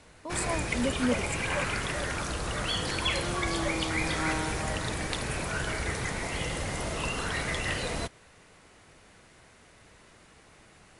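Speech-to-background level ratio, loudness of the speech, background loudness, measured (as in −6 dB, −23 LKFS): −2.5 dB, −33.5 LKFS, −31.0 LKFS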